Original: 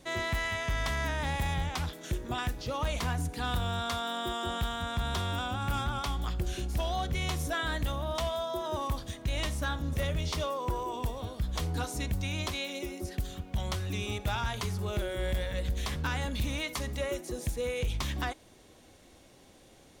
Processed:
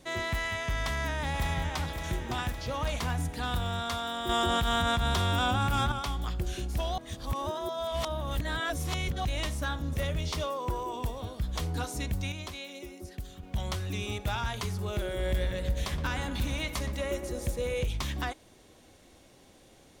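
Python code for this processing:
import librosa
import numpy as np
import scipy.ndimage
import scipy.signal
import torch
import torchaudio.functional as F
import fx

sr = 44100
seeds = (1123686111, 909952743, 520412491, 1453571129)

y = fx.echo_throw(x, sr, start_s=0.78, length_s=1.08, ms=560, feedback_pct=60, wet_db=-7.5)
y = fx.env_flatten(y, sr, amount_pct=100, at=(4.29, 5.92))
y = fx.echo_filtered(y, sr, ms=119, feedback_pct=80, hz=2000.0, wet_db=-9.5, at=(14.93, 17.84))
y = fx.edit(y, sr, fx.reverse_span(start_s=6.98, length_s=2.27),
    fx.clip_gain(start_s=12.32, length_s=1.11, db=-6.0), tone=tone)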